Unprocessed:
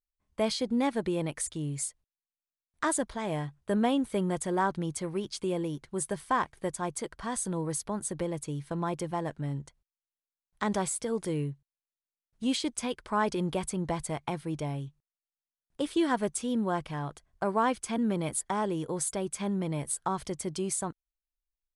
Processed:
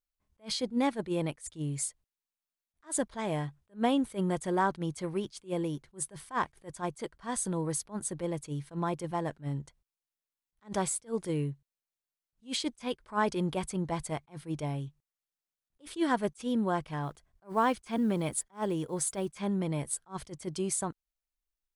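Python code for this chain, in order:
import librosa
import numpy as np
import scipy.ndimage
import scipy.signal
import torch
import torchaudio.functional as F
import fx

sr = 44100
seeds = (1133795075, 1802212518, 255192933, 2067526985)

y = fx.block_float(x, sr, bits=7, at=(17.03, 19.39))
y = fx.attack_slew(y, sr, db_per_s=300.0)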